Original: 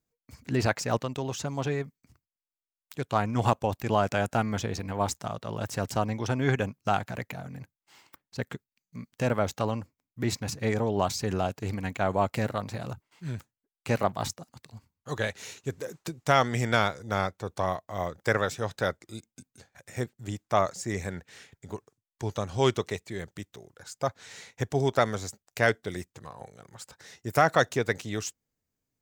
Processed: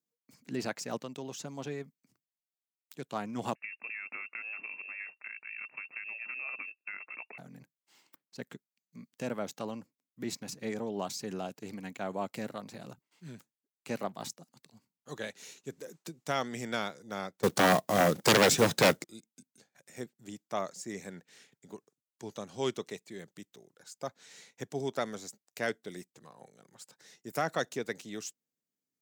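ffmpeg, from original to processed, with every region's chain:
-filter_complex "[0:a]asettb=1/sr,asplit=3[a][b][c];[a]atrim=end=3.554[d];[b]atrim=start=3.55:end=7.38,asetpts=PTS-STARTPTS,afade=t=in:d=0.004:c=qsin,afade=t=out:st=3.826:d=0.004:c=qsin,acompressor=threshold=-27dB:ratio=5:attack=3.2:release=140:knee=1:detection=peak,lowpass=f=2.4k:t=q:w=0.5098,lowpass=f=2.4k:t=q:w=0.6013,lowpass=f=2.4k:t=q:w=0.9,lowpass=f=2.4k:t=q:w=2.563,afreqshift=-2800[e];[c]atrim=start=7.376[f];[d][e]acrossfade=d=0.004:c1=hsin:c2=qsin[g];[g][f]acrossfade=d=0.004:c1=qsin:c2=hsin,asettb=1/sr,asplit=3[h][i][j];[h]atrim=end=17.434[k];[i]atrim=start=17.43:end=19.04,asetpts=PTS-STARTPTS,afade=t=in:d=0.004:c=qsin,afade=t=out:st=1.606:d=0.004:c=qsin,lowshelf=f=400:g=5.5,aeval=exprs='0.447*sin(PI/2*5.62*val(0)/0.447)':c=same,acrusher=bits=4:mode=log:mix=0:aa=0.000001[l];[j]atrim=start=19.036[m];[k][l]acrossfade=d=0.004:c1=hsin:c2=qsin[n];[n][m]acrossfade=d=0.004:c1=qsin:c2=hsin,highpass=f=170:w=0.5412,highpass=f=170:w=1.3066,equalizer=f=1.1k:w=0.45:g=-6,volume=-5dB"

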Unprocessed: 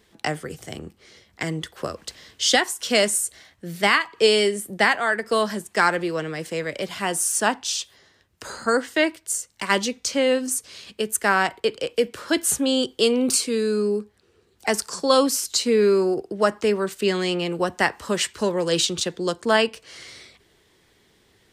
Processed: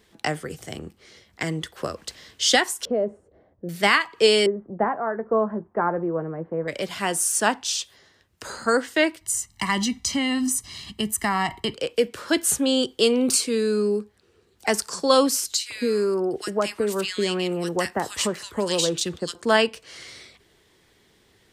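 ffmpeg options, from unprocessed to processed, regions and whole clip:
-filter_complex "[0:a]asettb=1/sr,asplit=3[a][b][c];[a]atrim=end=2.854[d];[b]atrim=start=2.85:end=3.69,asetpts=PTS-STARTPTS,afade=t=in:d=0.004:c=qsin,afade=t=out:st=0.836:d=0.004:c=qsin,lowpass=f=520:t=q:w=1.9,acompressor=threshold=-23dB:ratio=2:attack=3.2:release=140:knee=1:detection=peak[e];[c]atrim=start=3.686[f];[d][e]acrossfade=d=0.004:c1=hsin:c2=qsin[g];[g][f]acrossfade=d=0.004:c1=qsin:c2=hsin,asettb=1/sr,asplit=3[h][i][j];[h]atrim=end=4.464[k];[i]atrim=start=4.46:end=6.68,asetpts=PTS-STARTPTS,afade=t=in:d=0.004:c=qsin,afade=t=out:st=2.216:d=0.004:c=qsin,lowpass=f=1.1k:w=0.5412,lowpass=f=1.1k:w=1.3066,asplit=2[l][m];[m]adelay=18,volume=-13.5dB[n];[l][n]amix=inputs=2:normalize=0,atrim=end_sample=97902[o];[j]atrim=start=6.676[p];[k][o]acrossfade=d=0.004:c1=hsin:c2=qsin[q];[q][p]acrossfade=d=0.004:c1=qsin:c2=hsin,asettb=1/sr,asplit=3[r][s][t];[r]atrim=end=9.214[u];[s]atrim=start=9.21:end=11.74,asetpts=PTS-STARTPTS,afade=t=in:d=0.004:c=qsin,afade=t=out:st=2.526:d=0.004:c=qsin,lowshelf=f=170:g=11.5,aecho=1:1:1:0.88,atrim=end_sample=111573,acompressor=threshold=-20dB:ratio=3:attack=3.2:release=140:knee=1:detection=peak[v];[t]atrim=start=11.736[w];[u][v]acrossfade=d=0.004:c1=hsin:c2=qsin[x];[x][w]acrossfade=d=0.004:c1=qsin:c2=hsin,asettb=1/sr,asplit=3[y][z][aa];[y]atrim=end=15.544[ab];[z]atrim=start=15.54:end=19.35,asetpts=PTS-STARTPTS,afade=t=in:d=0.004:c=qsin,afade=t=out:st=3.806:d=0.004:c=qsin,highshelf=f=6.4k:g=5.5,acrossover=split=870|5700[ac][ad][ae];[ac]acompressor=threshold=-21dB:ratio=4[af];[ad]acompressor=threshold=-25dB:ratio=4[ag];[ae]acompressor=threshold=-29dB:ratio=4[ah];[af][ag][ah]amix=inputs=3:normalize=0,acrossover=split=1600[ai][aj];[ai]adelay=160[ak];[ak][aj]amix=inputs=2:normalize=0,atrim=end_sample=168021[al];[aa]atrim=start=19.346[am];[ab][al]acrossfade=d=0.004:c1=hsin:c2=qsin[an];[an][am]acrossfade=d=0.004:c1=qsin:c2=hsin"

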